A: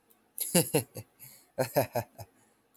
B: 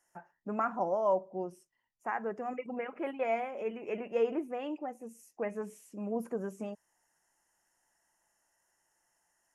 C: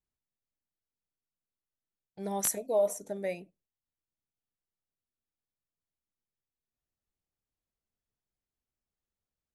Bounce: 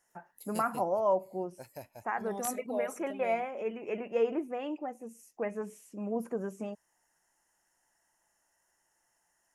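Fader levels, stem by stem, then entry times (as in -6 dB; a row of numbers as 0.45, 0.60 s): -18.5, +1.0, -8.0 dB; 0.00, 0.00, 0.00 s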